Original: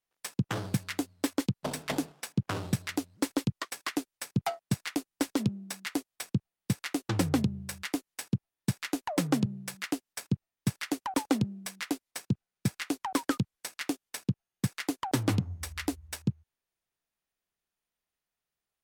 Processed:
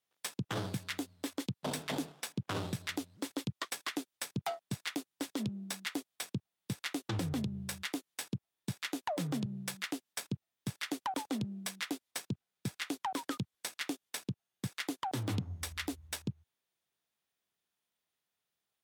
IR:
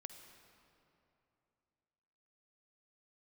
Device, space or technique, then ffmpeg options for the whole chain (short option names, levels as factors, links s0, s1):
broadcast voice chain: -af "highpass=92,deesser=0.55,acompressor=threshold=0.0355:ratio=3,equalizer=f=3500:t=o:w=0.36:g=5,alimiter=level_in=1.19:limit=0.0631:level=0:latency=1:release=33,volume=0.841,volume=1.12"